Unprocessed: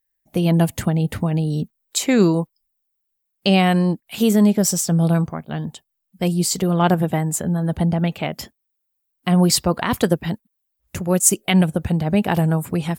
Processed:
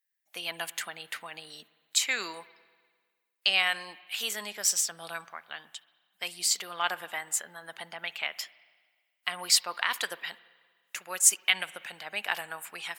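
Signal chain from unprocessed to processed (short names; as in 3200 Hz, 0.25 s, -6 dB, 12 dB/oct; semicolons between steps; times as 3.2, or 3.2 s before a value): Chebyshev high-pass 1800 Hz, order 2; high shelf 8200 Hz -8 dB; spring tank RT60 1.6 s, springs 48/57 ms, chirp 20 ms, DRR 18.5 dB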